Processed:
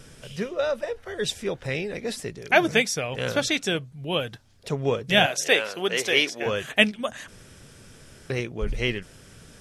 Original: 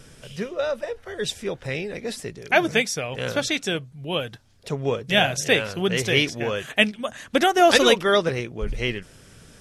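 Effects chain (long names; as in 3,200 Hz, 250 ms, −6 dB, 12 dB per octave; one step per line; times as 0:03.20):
0:05.26–0:06.46: high-pass filter 370 Hz 12 dB per octave
0:07.28–0:08.30: fill with room tone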